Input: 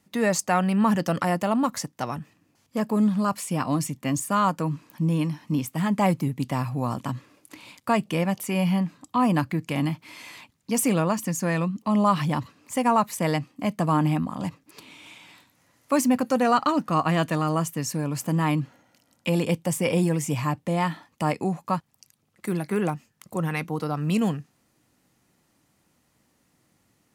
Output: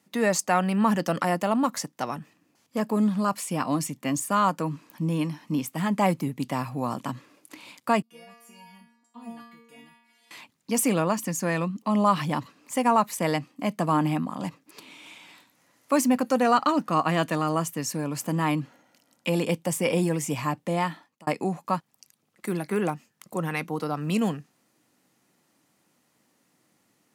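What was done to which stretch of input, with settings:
8.02–10.31 metallic resonator 230 Hz, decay 0.83 s, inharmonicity 0.002
20.78–21.27 fade out
whole clip: HPF 180 Hz 12 dB/oct

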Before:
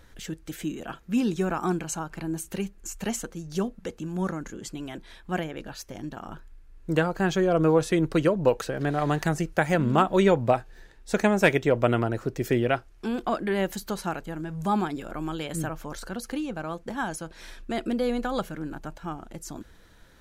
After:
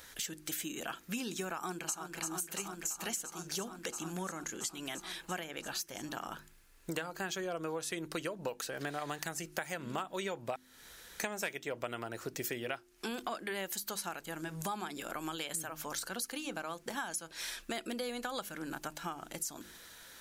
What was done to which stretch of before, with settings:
1.54–2.19 echo throw 0.34 s, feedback 80%, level -8 dB
10.56–11.2 room tone
whole clip: tilt +3.5 dB/oct; de-hum 50.9 Hz, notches 7; compressor 6:1, threshold -38 dBFS; gain +2 dB

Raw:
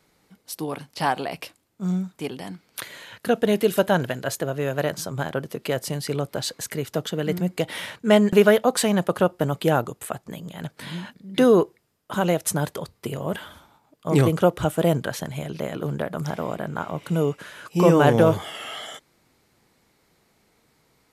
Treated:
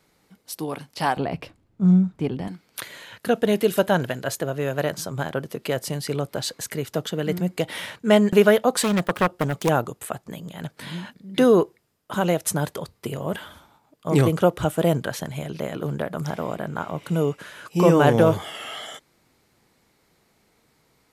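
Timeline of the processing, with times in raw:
1.17–2.48 RIAA curve playback
8.83–9.69 self-modulated delay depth 0.48 ms

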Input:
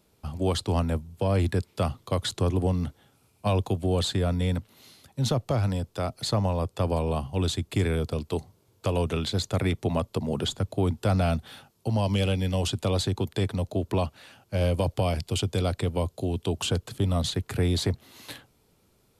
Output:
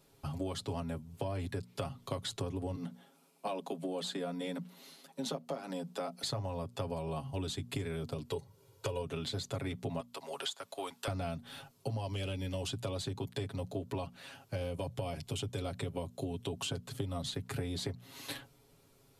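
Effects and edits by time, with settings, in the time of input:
2.76–6.24 rippled Chebyshev high-pass 160 Hz, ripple 3 dB
8.29–9.02 comb 2.1 ms, depth 61%
10–11.08 HPF 860 Hz
14.62–16.57 notch 4700 Hz
whole clip: notches 60/120/180/240 Hz; comb 7.3 ms, depth 82%; compressor 6:1, threshold -33 dBFS; gain -2 dB

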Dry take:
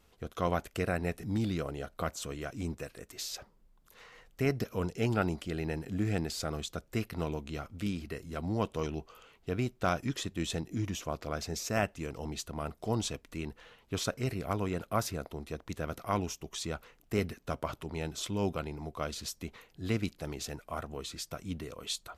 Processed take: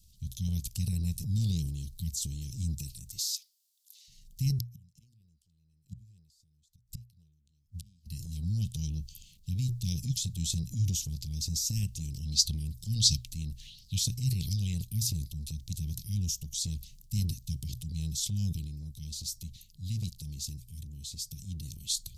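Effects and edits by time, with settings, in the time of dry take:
3.19–4.08 brick-wall FIR high-pass 1800 Hz
4.59–8.06 flipped gate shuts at -29 dBFS, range -36 dB
12.04–15.07 LFO bell 1.4 Hz 730–5100 Hz +15 dB
18.56–21.63 gain -4 dB
whole clip: inverse Chebyshev band-stop 480–1400 Hz, stop band 70 dB; notches 60/120 Hz; transient shaper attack 0 dB, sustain +7 dB; gain +7.5 dB

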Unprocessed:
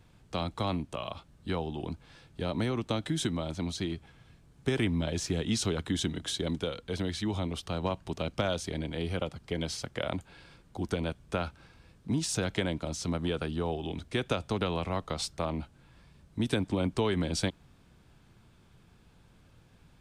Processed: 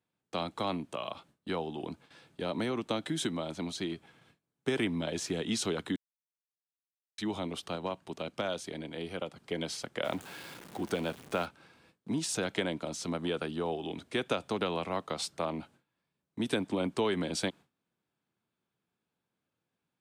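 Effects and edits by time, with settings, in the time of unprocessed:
5.96–7.18 mute
7.76–9.37 gain -3 dB
10.04–11.46 zero-crossing step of -41.5 dBFS
whole clip: gate with hold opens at -46 dBFS; HPF 210 Hz 12 dB/oct; bell 5500 Hz -2.5 dB

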